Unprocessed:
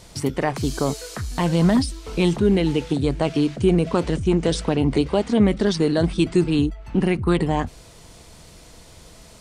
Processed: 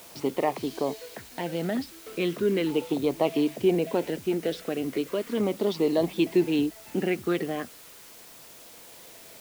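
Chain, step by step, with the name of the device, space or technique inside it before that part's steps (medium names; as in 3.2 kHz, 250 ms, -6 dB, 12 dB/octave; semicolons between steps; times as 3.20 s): shortwave radio (band-pass 330–3000 Hz; tremolo 0.31 Hz, depth 43%; LFO notch saw down 0.37 Hz 750–1800 Hz; white noise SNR 21 dB)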